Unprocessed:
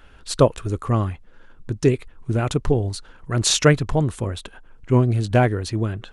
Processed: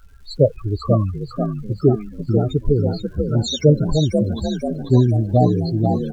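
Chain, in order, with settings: loudest bins only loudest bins 8; frequency-shifting echo 490 ms, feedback 51%, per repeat +54 Hz, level -6 dB; crackle 510 per s -52 dBFS; trim +3 dB

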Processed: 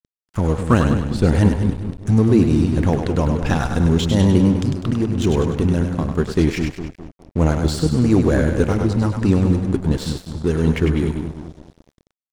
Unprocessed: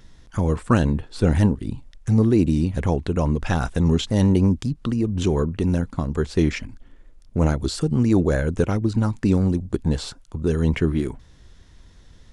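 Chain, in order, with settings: two-band feedback delay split 390 Hz, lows 204 ms, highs 100 ms, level -5.5 dB; crossover distortion -37 dBFS; trim +3 dB

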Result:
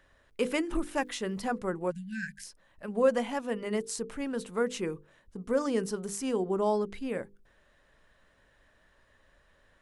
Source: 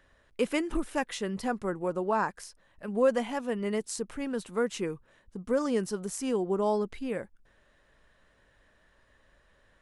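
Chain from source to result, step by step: 0.97–1.51 s: crackle 280 per s -59 dBFS; hum notches 50/100/150/200/250/300/350/400/450/500 Hz; 1.91–2.45 s: spectral selection erased 240–1500 Hz

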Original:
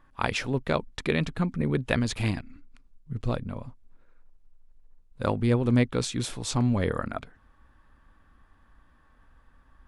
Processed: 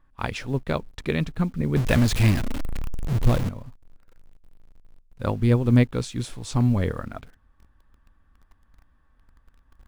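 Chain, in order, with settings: 1.76–3.49 s: jump at every zero crossing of -24.5 dBFS; bass shelf 150 Hz +8 dB; in parallel at -9 dB: bit crusher 7-bit; on the sum: upward expansion 1.5:1, over -26 dBFS

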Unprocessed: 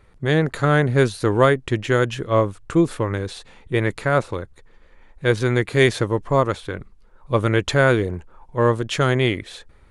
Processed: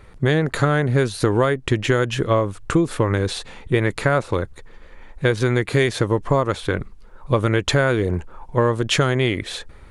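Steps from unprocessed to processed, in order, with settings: compression 10:1, threshold -22 dBFS, peak gain reduction 13 dB; trim +8 dB

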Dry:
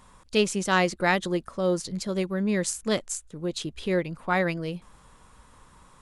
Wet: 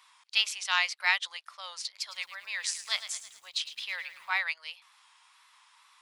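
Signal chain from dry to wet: wow and flutter 65 cents; steep high-pass 860 Hz 36 dB/octave; high-order bell 3.3 kHz +9 dB; 1.99–4.38 s: bit-crushed delay 108 ms, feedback 55%, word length 8-bit, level -12 dB; trim -5.5 dB

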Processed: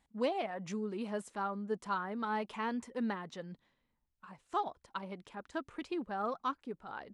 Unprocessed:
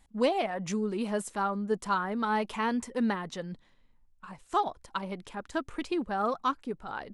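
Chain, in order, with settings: high-pass 97 Hz 6 dB/octave; treble shelf 7.9 kHz -11 dB; trim -6.5 dB

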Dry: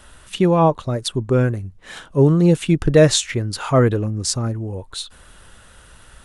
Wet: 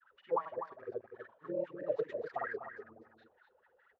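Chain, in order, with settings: CVSD coder 64 kbps; low-pass 4 kHz 12 dB/octave; feedback comb 75 Hz, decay 0.29 s, harmonics odd, mix 60%; wah-wah 3.2 Hz 420–1900 Hz, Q 17; granulator 100 ms, pitch spread up and down by 0 st; delay 386 ms -8.5 dB; granular stretch 0.64×, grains 50 ms; trim +4.5 dB

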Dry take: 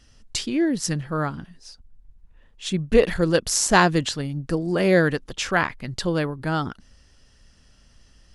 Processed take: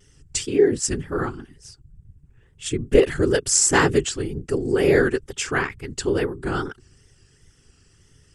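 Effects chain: whisper effect; graphic EQ with 31 bands 200 Hz -9 dB, 400 Hz +9 dB, 630 Hz -12 dB, 1 kHz -5 dB, 4 kHz -8 dB, 8 kHz +10 dB; wow and flutter 69 cents

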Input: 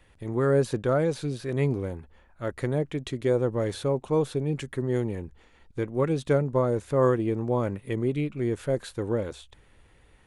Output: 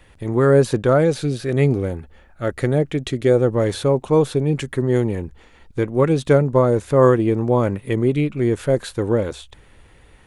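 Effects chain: 1.01–3.52 s: band-stop 1 kHz, Q 5.7; trim +8.5 dB

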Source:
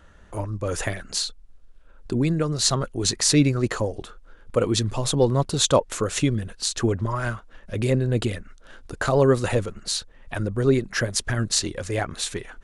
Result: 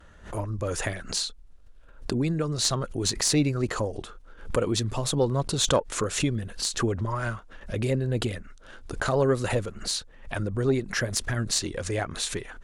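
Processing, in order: vibrato 0.65 Hz 26 cents; in parallel at +1.5 dB: compression, threshold -28 dBFS, peak gain reduction 14.5 dB; on the sum: Chebyshev shaper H 2 -14 dB, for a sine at 0.5 dBFS; swell ahead of each attack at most 130 dB/s; trim -7 dB

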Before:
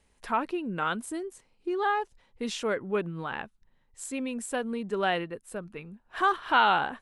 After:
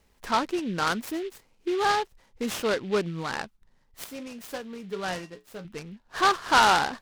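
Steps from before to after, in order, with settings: 4.04–5.65 s: feedback comb 61 Hz, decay 0.2 s, harmonics odd, mix 80%; delay time shaken by noise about 2.5 kHz, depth 0.051 ms; trim +3 dB

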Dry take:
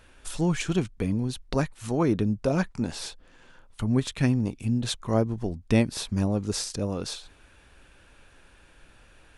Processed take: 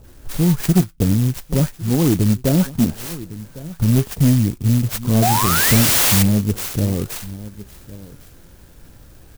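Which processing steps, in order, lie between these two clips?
on a send: delay 1105 ms -21.5 dB; on the sum: flange 0.43 Hz, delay 2.4 ms, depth 4.7 ms, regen +77%; 0.60–1.13 s: transient shaper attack +5 dB, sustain -7 dB; 2.29–3.91 s: dynamic bell 300 Hz, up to +3 dB, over -35 dBFS, Q 1; 5.22–6.19 s: painted sound rise 660–7400 Hz -22 dBFS; peaking EQ 110 Hz +11 dB 2.6 oct; bands offset in time lows, highs 40 ms, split 1.1 kHz; in parallel at -1 dB: compression, threshold -29 dBFS, peak gain reduction 16.5 dB; on the sum: saturation -12 dBFS, distortion -16 dB; sampling jitter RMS 0.12 ms; trim +5.5 dB

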